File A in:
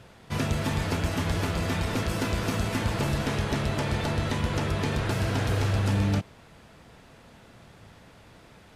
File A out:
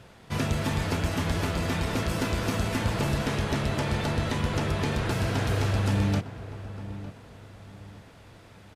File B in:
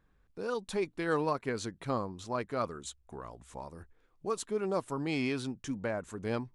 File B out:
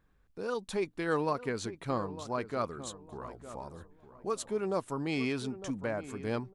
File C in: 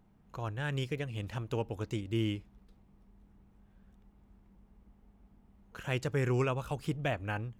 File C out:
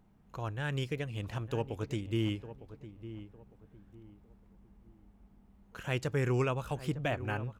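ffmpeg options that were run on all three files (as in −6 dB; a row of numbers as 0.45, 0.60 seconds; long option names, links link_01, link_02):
-filter_complex "[0:a]asplit=2[link_01][link_02];[link_02]adelay=905,lowpass=frequency=1400:poles=1,volume=-13dB,asplit=2[link_03][link_04];[link_04]adelay=905,lowpass=frequency=1400:poles=1,volume=0.32,asplit=2[link_05][link_06];[link_06]adelay=905,lowpass=frequency=1400:poles=1,volume=0.32[link_07];[link_01][link_03][link_05][link_07]amix=inputs=4:normalize=0"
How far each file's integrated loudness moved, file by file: −0.5, −0.5, 0.0 LU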